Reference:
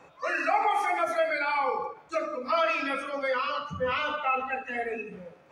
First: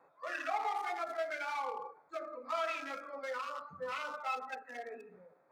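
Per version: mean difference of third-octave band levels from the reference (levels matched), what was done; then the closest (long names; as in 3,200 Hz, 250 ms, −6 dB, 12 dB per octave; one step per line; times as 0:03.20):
4.5 dB: adaptive Wiener filter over 15 samples
high-pass filter 620 Hz 6 dB per octave
every ending faded ahead of time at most 230 dB per second
level −7.5 dB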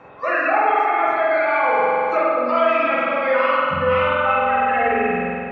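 7.5 dB: spring reverb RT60 2.3 s, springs 45 ms, chirp 20 ms, DRR −5.5 dB
speech leveller within 5 dB 0.5 s
low-pass filter 2,400 Hz 12 dB per octave
level +4.5 dB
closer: first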